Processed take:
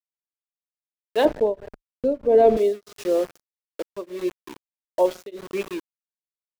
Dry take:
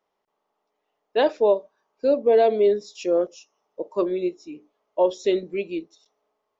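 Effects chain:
on a send at −18.5 dB: convolution reverb RT60 1.2 s, pre-delay 3 ms
on the sum: centre clipping without the shift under −31 dBFS
0:01.25–0:02.57: spectral tilt −4 dB per octave
tremolo along a rectified sine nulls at 1.6 Hz

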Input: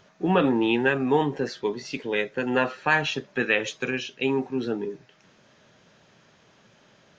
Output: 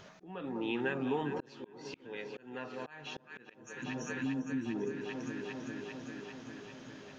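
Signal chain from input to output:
gain on a spectral selection 0:03.54–0:04.76, 360–5,500 Hz −28 dB
delay that swaps between a low-pass and a high-pass 199 ms, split 1,200 Hz, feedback 83%, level −11 dB
downward compressor 3 to 1, threshold −39 dBFS, peak gain reduction 17 dB
volume swells 552 ms
level +3 dB

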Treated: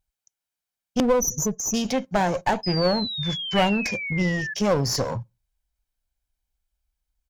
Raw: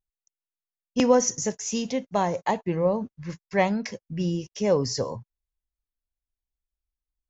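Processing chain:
0:01.00–0:01.74: expanding power law on the bin magnitudes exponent 2.5
comb filter 1.3 ms, depth 39%
in parallel at −1 dB: downward compressor, threshold −28 dBFS, peak gain reduction 11.5 dB
on the sum: asymmetric clip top −27.5 dBFS
0:02.63–0:04.54: sound drawn into the spectrogram fall 1,700–5,100 Hz −33 dBFS
on a send at −23 dB: convolution reverb RT60 0.25 s, pre-delay 3 ms
on the sum: level +2 dB

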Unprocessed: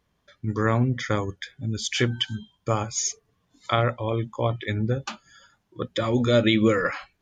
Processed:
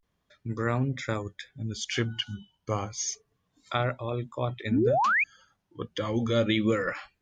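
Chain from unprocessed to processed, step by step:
pitch vibrato 0.3 Hz 97 cents
sound drawn into the spectrogram rise, 0:04.71–0:05.24, 210–2,600 Hz −18 dBFS
level −5.5 dB

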